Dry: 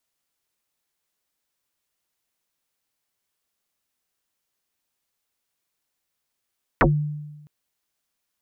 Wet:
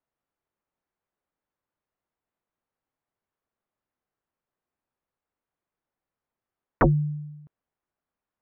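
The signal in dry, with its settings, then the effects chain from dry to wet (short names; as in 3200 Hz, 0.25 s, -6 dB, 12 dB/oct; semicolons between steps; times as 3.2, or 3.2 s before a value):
FM tone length 0.66 s, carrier 149 Hz, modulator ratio 1.31, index 12, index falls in 0.15 s exponential, decay 1.15 s, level -11.5 dB
LPF 1300 Hz 12 dB/oct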